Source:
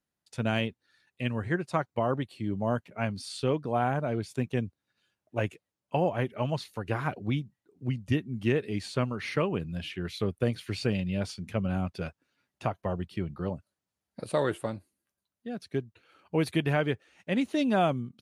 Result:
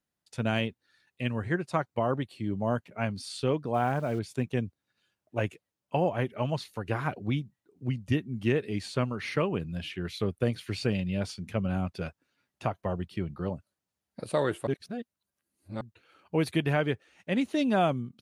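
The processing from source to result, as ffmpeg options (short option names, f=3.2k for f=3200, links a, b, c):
-filter_complex "[0:a]asettb=1/sr,asplit=3[a][b][c];[a]atrim=end=3.744[d];[b]atrim=start=3.74:end=4.19,asetpts=PTS-STARTPTS,afade=t=in:d=0.004:c=qsin,afade=t=out:st=0.446:d=0.004:c=qsin,aeval=exprs='val(0)*gte(abs(val(0)),0.00531)':c=same[e];[c]atrim=start=4.186[f];[d][e]acrossfade=d=0.004:c1=hsin:c2=qsin[g];[g][f]acrossfade=d=0.004:c1=qsin:c2=hsin,asplit=3[h][i][j];[h]atrim=end=14.672[k];[i]atrim=start=14.668:end=15.812,asetpts=PTS-STARTPTS,areverse[l];[j]atrim=start=15.808[m];[k][l]acrossfade=d=0.004:c1=hsin:c2=hsin[n];[n][m]acrossfade=d=0.004:c1=hsin:c2=hsin"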